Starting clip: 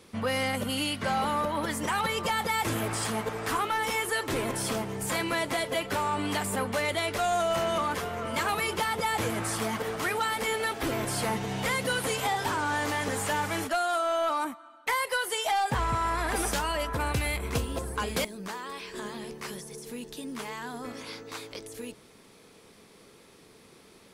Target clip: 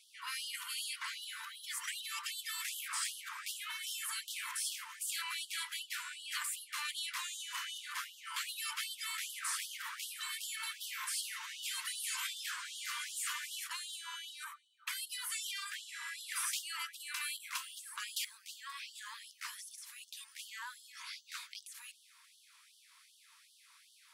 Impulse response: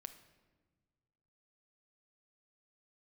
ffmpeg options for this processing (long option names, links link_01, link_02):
-af "afftfilt=real='re*lt(hypot(re,im),0.112)':imag='im*lt(hypot(re,im),0.112)':win_size=1024:overlap=0.75,afftfilt=real='re*gte(b*sr/1024,870*pow(2900/870,0.5+0.5*sin(2*PI*2.6*pts/sr)))':imag='im*gte(b*sr/1024,870*pow(2900/870,0.5+0.5*sin(2*PI*2.6*pts/sr)))':win_size=1024:overlap=0.75,volume=-3.5dB"